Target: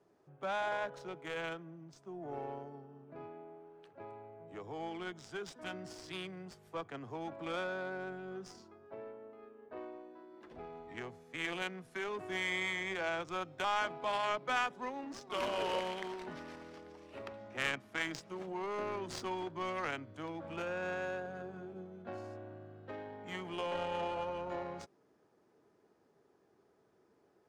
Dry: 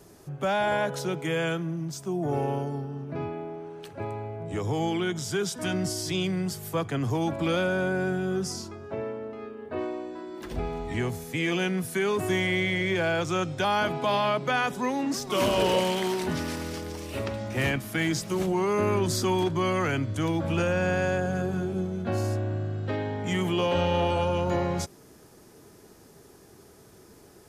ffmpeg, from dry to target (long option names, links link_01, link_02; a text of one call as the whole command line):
ffmpeg -i in.wav -af "aderivative,adynamicsmooth=sensitivity=3.5:basefreq=710,volume=11.5dB" out.wav